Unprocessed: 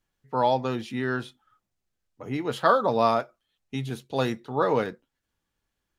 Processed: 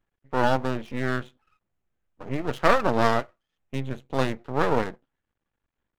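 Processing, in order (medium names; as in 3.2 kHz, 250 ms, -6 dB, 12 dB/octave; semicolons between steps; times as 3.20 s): local Wiener filter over 9 samples; half-wave rectifier; trim +4 dB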